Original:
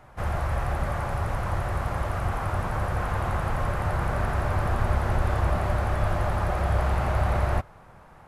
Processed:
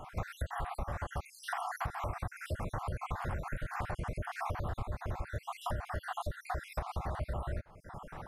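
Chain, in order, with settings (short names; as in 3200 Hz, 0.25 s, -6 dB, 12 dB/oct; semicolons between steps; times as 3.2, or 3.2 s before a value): random spectral dropouts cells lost 57%; compressor 10:1, threshold -40 dBFS, peak gain reduction 21.5 dB; gain +6.5 dB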